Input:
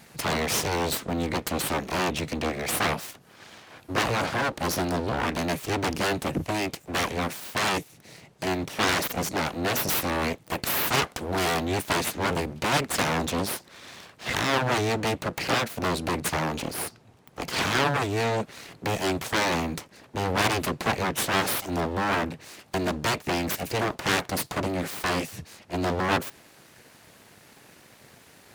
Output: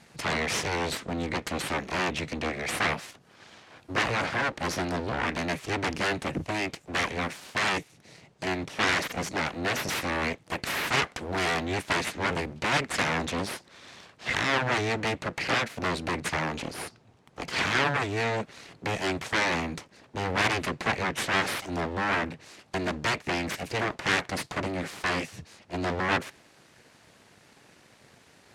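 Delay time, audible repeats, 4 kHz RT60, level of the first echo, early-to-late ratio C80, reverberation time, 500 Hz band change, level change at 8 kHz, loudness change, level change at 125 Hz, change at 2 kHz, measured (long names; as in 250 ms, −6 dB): no echo audible, no echo audible, no reverb audible, no echo audible, no reverb audible, no reverb audible, −3.5 dB, −5.5 dB, −2.0 dB, −3.5 dB, +1.0 dB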